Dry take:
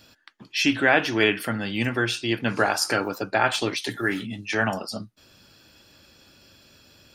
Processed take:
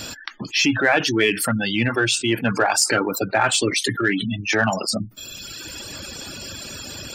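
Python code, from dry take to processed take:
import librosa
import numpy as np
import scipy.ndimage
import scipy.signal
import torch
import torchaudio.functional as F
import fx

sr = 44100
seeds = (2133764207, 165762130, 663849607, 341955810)

p1 = fx.dereverb_blind(x, sr, rt60_s=1.3)
p2 = fx.spec_gate(p1, sr, threshold_db=-25, keep='strong')
p3 = fx.peak_eq(p2, sr, hz=7700.0, db=13.5, octaves=0.36)
p4 = 10.0 ** (-20.5 / 20.0) * np.tanh(p3 / 10.0 ** (-20.5 / 20.0))
p5 = p3 + (p4 * librosa.db_to_amplitude(-8.5))
y = fx.env_flatten(p5, sr, amount_pct=50)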